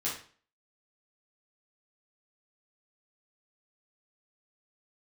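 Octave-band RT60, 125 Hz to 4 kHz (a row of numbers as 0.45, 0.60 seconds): 0.45, 0.45, 0.45, 0.45, 0.40, 0.40 seconds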